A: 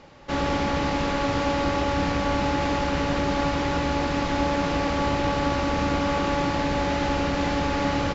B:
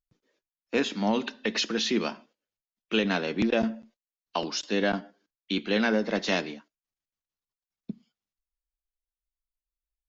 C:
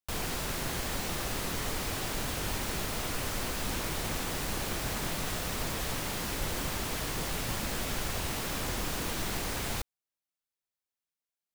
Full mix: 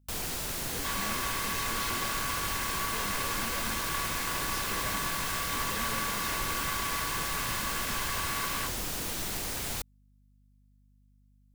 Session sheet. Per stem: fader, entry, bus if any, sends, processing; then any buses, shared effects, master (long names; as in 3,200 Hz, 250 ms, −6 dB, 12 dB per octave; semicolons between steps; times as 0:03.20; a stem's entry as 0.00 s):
−4.0 dB, 0.55 s, no send, lower of the sound and its delayed copy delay 1.9 ms; Chebyshev high-pass filter 990 Hz, order 5
−11.5 dB, 0.00 s, no send, hard clipping −29 dBFS, distortion −6 dB
−3.5 dB, 0.00 s, no send, high-shelf EQ 4,100 Hz +7.5 dB; mains hum 50 Hz, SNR 28 dB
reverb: not used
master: no processing